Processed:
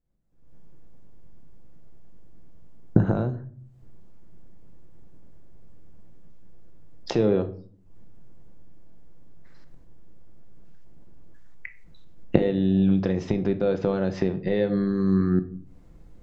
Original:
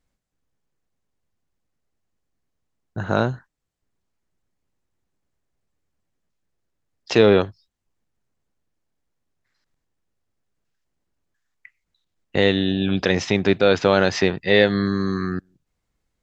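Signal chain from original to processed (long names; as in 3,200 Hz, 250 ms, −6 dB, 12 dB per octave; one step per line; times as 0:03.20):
camcorder AGC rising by 54 dB per second
tilt shelving filter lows +9.5 dB
rectangular room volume 560 cubic metres, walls furnished, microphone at 0.8 metres
level −14 dB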